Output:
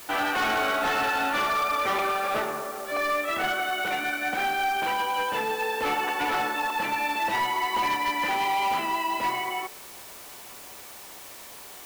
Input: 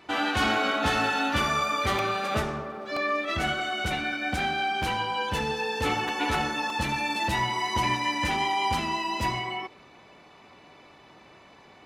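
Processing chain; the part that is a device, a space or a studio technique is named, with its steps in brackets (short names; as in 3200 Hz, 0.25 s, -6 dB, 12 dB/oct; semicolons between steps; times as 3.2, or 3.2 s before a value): aircraft radio (BPF 390–2600 Hz; hard clip -25 dBFS, distortion -14 dB; white noise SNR 17 dB); gain +3.5 dB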